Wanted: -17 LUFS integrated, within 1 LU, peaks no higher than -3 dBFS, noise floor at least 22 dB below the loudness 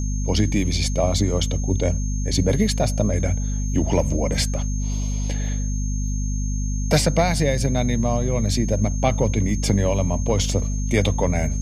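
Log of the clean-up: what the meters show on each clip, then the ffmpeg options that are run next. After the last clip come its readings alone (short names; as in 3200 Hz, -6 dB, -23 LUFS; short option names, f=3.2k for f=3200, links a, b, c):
hum 50 Hz; harmonics up to 250 Hz; hum level -21 dBFS; steady tone 6400 Hz; tone level -35 dBFS; loudness -22.0 LUFS; peak -6.0 dBFS; loudness target -17.0 LUFS
-> -af "bandreject=f=50:t=h:w=6,bandreject=f=100:t=h:w=6,bandreject=f=150:t=h:w=6,bandreject=f=200:t=h:w=6,bandreject=f=250:t=h:w=6"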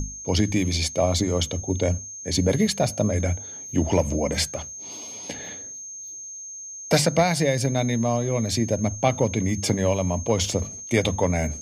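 hum none; steady tone 6400 Hz; tone level -35 dBFS
-> -af "bandreject=f=6.4k:w=30"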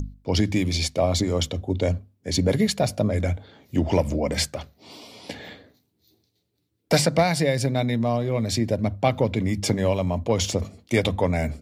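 steady tone none; loudness -24.0 LUFS; peak -7.5 dBFS; loudness target -17.0 LUFS
-> -af "volume=7dB,alimiter=limit=-3dB:level=0:latency=1"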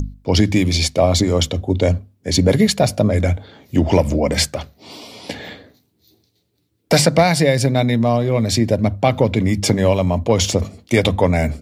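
loudness -17.0 LUFS; peak -3.0 dBFS; noise floor -65 dBFS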